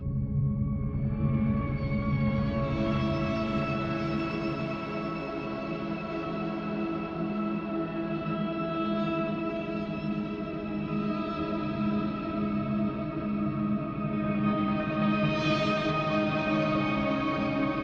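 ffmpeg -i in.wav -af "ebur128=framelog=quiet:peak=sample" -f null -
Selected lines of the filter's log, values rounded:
Integrated loudness:
  I:         -29.8 LUFS
  Threshold: -39.8 LUFS
Loudness range:
  LRA:         5.1 LU
  Threshold: -50.2 LUFS
  LRA low:   -32.5 LUFS
  LRA high:  -27.4 LUFS
Sample peak:
  Peak:      -15.8 dBFS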